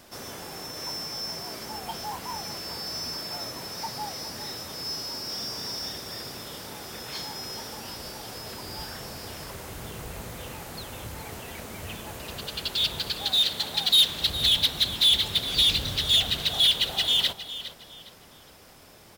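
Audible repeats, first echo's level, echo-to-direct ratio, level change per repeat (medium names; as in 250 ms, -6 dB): 2, -13.5 dB, -13.0 dB, -11.0 dB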